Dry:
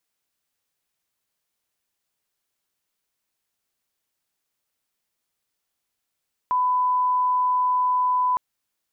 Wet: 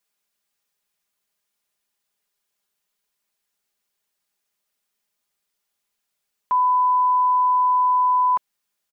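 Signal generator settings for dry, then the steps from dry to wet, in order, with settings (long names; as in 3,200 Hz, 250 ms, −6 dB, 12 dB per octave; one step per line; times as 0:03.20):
line-up tone −18 dBFS 1.86 s
low-shelf EQ 440 Hz −3.5 dB
comb filter 4.9 ms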